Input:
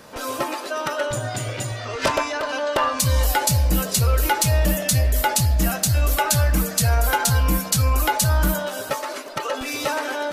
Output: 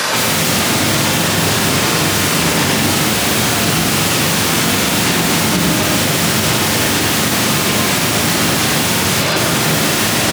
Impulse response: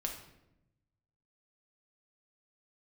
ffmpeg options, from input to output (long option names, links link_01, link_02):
-filter_complex "[0:a]tiltshelf=frequency=790:gain=-9,aeval=exprs='(mod(23.7*val(0)+1,2)-1)/23.7':channel_layout=same,highshelf=frequency=12000:gain=-11,asplit=2[link_01][link_02];[1:a]atrim=start_sample=2205,lowpass=3200,adelay=99[link_03];[link_02][link_03]afir=irnorm=-1:irlink=0,volume=0.5dB[link_04];[link_01][link_04]amix=inputs=2:normalize=0,acrossover=split=340[link_05][link_06];[link_06]acompressor=threshold=-43dB:ratio=5[link_07];[link_05][link_07]amix=inputs=2:normalize=0,highpass=frequency=97:width=0.5412,highpass=frequency=97:width=1.3066,asplit=2[link_08][link_09];[link_09]adelay=42,volume=-5.5dB[link_10];[link_08][link_10]amix=inputs=2:normalize=0,alimiter=level_in=30.5dB:limit=-1dB:release=50:level=0:latency=1,volume=-3dB"